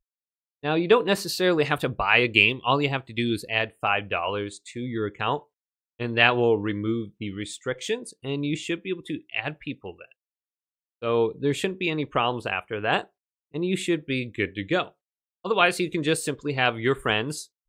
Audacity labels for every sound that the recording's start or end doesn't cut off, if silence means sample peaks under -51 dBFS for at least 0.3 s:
0.630000	5.430000	sound
5.990000	10.120000	sound
11.020000	13.070000	sound
13.540000	14.910000	sound